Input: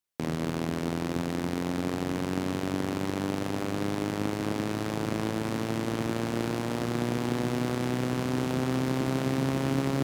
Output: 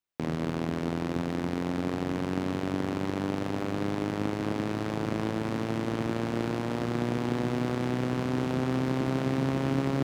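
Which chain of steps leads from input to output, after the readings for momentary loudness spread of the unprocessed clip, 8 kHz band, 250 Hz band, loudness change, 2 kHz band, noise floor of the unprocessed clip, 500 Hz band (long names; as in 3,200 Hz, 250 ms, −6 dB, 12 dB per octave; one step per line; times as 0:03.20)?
3 LU, −6.5 dB, 0.0 dB, 0.0 dB, −1.0 dB, −33 dBFS, 0.0 dB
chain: parametric band 14,000 Hz −10.5 dB 1.7 octaves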